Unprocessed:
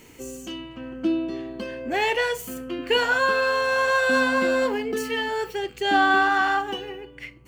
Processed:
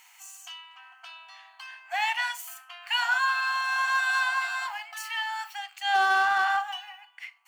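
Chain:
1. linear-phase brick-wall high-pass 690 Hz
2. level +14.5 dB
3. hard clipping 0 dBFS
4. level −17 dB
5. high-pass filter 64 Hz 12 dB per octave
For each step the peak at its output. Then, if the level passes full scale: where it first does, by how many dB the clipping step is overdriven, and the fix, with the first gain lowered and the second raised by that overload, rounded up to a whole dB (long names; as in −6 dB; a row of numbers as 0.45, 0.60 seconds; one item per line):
−9.0, +5.5, 0.0, −17.0, −16.0 dBFS
step 2, 5.5 dB
step 2 +8.5 dB, step 4 −11 dB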